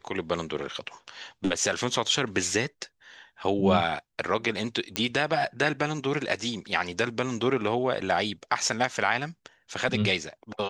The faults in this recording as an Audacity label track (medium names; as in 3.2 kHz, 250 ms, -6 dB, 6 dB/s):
4.960000	4.960000	pop -9 dBFS